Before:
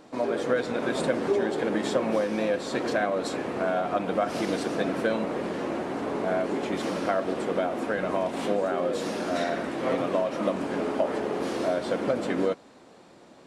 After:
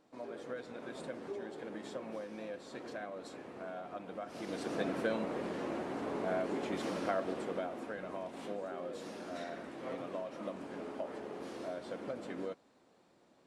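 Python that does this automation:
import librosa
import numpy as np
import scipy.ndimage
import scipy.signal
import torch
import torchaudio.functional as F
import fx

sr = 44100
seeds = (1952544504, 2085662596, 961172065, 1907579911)

y = fx.gain(x, sr, db=fx.line((4.29, -17.5), (4.74, -8.0), (7.19, -8.0), (8.03, -15.0)))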